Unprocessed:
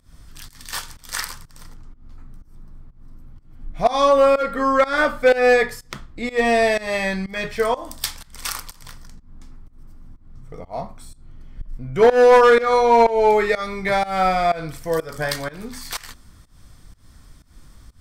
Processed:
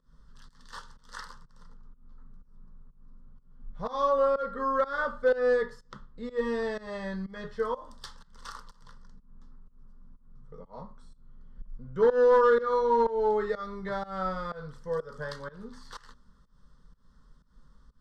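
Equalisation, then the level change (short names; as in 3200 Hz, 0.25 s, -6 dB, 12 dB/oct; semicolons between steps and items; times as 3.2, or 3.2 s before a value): LPF 3500 Hz 12 dB/oct; fixed phaser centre 470 Hz, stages 8; -8.5 dB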